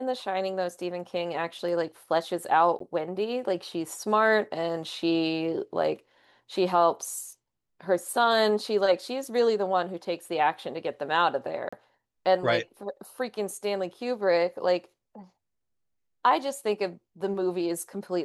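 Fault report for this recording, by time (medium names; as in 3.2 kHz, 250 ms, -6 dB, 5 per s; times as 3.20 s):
2.79–2.80 s: dropout 14 ms
11.69–11.72 s: dropout 35 ms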